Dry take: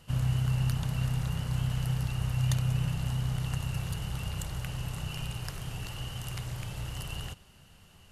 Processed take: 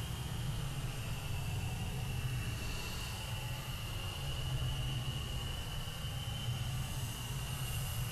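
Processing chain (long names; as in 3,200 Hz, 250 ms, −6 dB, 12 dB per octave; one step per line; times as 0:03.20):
extreme stretch with random phases 12×, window 0.10 s, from 0:05.63
soft clipping −24.5 dBFS, distortion −27 dB
level −1 dB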